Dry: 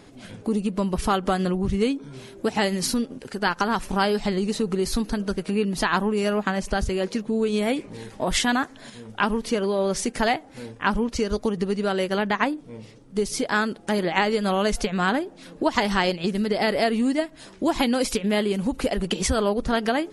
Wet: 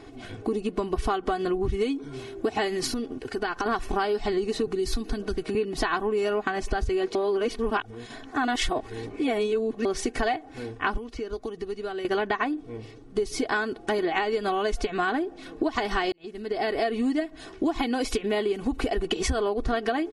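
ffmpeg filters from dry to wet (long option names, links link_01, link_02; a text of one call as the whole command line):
ffmpeg -i in.wav -filter_complex "[0:a]asettb=1/sr,asplit=3[link_01][link_02][link_03];[link_01]atrim=end=1.724[link_04];[link_02]atrim=start=1.72:end=2.23,asetpts=PTS-STARTPTS,afade=type=in:duration=0.004:curve=qsin,afade=type=out:start_time=0.506:duration=0.004:curve=qsin,highshelf=frequency=6100:gain=6.5[link_05];[link_03]atrim=start=2.226[link_06];[link_04][link_05]acrossfade=duration=0.004:curve1=hsin:curve2=qsin[link_07];[link_07][link_06]acrossfade=duration=0.004:curve1=qsin:curve2=hsin,asettb=1/sr,asplit=3[link_08][link_09][link_10];[link_08]atrim=end=2.874[link_11];[link_09]atrim=start=2.87:end=3.66,asetpts=PTS-STARTPTS,afade=type=in:duration=0.004:curve=qsin,afade=type=out:start_time=0.786:duration=0.004:curve=qsin,acompressor=threshold=-25dB:ratio=6:attack=3.2:release=140:knee=1:detection=peak[link_12];[link_10]atrim=start=3.656[link_13];[link_11][link_12]acrossfade=duration=0.004:curve1=hsin:curve2=qsin[link_14];[link_14][link_13]acrossfade=duration=0.004:curve1=qsin:curve2=hsin,asettb=1/sr,asplit=3[link_15][link_16][link_17];[link_15]atrim=end=4.674[link_18];[link_16]atrim=start=4.67:end=5.55,asetpts=PTS-STARTPTS,afade=type=in:duration=0.004:curve=qsin,afade=type=out:start_time=0.876:duration=0.004:curve=qsin,acrossover=split=300|3000[link_19][link_20][link_21];[link_20]acompressor=threshold=-35dB:ratio=6:attack=3.2:release=140:knee=2.83:detection=peak[link_22];[link_19][link_22][link_21]amix=inputs=3:normalize=0[link_23];[link_17]atrim=start=5.546[link_24];[link_18][link_23]acrossfade=duration=0.004:curve1=hsin:curve2=qsin[link_25];[link_25][link_24]acrossfade=duration=0.004:curve1=qsin:curve2=hsin,asettb=1/sr,asplit=3[link_26][link_27][link_28];[link_26]atrim=end=10.974[link_29];[link_27]atrim=start=10.97:end=12.05,asetpts=PTS-STARTPTS,afade=type=in:duration=0.004:curve=qsin,afade=type=out:start_time=1.076:duration=0.004:curve=qsin,acrossover=split=100|3200[link_30][link_31][link_32];[link_30]acompressor=threshold=-47dB:ratio=4[link_33];[link_31]acompressor=threshold=-35dB:ratio=4[link_34];[link_32]acompressor=threshold=-52dB:ratio=4[link_35];[link_33][link_34][link_35]amix=inputs=3:normalize=0[link_36];[link_28]atrim=start=12.046[link_37];[link_29][link_36]acrossfade=duration=0.004:curve1=hsin:curve2=qsin[link_38];[link_38][link_37]acrossfade=duration=0.004:curve1=qsin:curve2=hsin,asplit=4[link_39][link_40][link_41][link_42];[link_39]atrim=end=7.152[link_43];[link_40]atrim=start=7.148:end=9.852,asetpts=PTS-STARTPTS,areverse[link_44];[link_41]atrim=start=9.848:end=16.12,asetpts=PTS-STARTPTS,afade=type=out:start_time=6.268:duration=0.004:curve=hsin[link_45];[link_42]atrim=start=16.12,asetpts=PTS-STARTPTS,afade=type=in:duration=0.98[link_46];[link_43][link_44]acrossfade=duration=0.004:curve1=hsin:curve2=hsin[link_47];[link_45][link_46]concat=n=2:v=0:a=1[link_48];[link_47][link_48]acrossfade=duration=0.004:curve1=hsin:curve2=hsin,lowpass=frequency=3100:poles=1,aecho=1:1:2.7:0.75,acompressor=threshold=-24dB:ratio=6,volume=1.5dB" out.wav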